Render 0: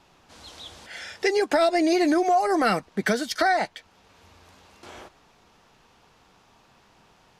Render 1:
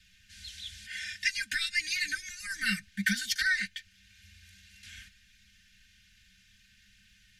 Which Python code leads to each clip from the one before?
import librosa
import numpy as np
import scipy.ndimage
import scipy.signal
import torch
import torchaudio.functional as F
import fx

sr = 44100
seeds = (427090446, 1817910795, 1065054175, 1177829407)

y = scipy.signal.sosfilt(scipy.signal.cheby1(5, 1.0, [200.0, 1600.0], 'bandstop', fs=sr, output='sos'), x)
y = y + 0.97 * np.pad(y, (int(3.3 * sr / 1000.0), 0))[:len(y)]
y = F.gain(torch.from_numpy(y), -1.5).numpy()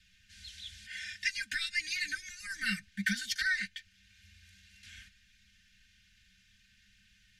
y = fx.high_shelf(x, sr, hz=11000.0, db=-7.5)
y = F.gain(torch.from_numpy(y), -3.0).numpy()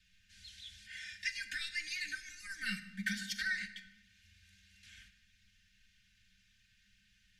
y = fx.room_shoebox(x, sr, seeds[0], volume_m3=580.0, walls='mixed', distance_m=0.54)
y = F.gain(torch.from_numpy(y), -5.5).numpy()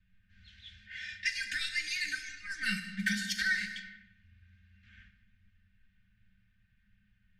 y = fx.rev_gated(x, sr, seeds[1], gate_ms=490, shape='falling', drr_db=9.0)
y = fx.env_lowpass(y, sr, base_hz=1000.0, full_db=-37.5)
y = F.gain(torch.from_numpy(y), 5.0).numpy()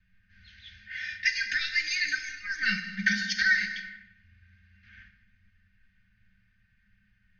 y = scipy.signal.sosfilt(scipy.signal.cheby1(6, 6, 6500.0, 'lowpass', fs=sr, output='sos'), x)
y = F.gain(torch.from_numpy(y), 7.5).numpy()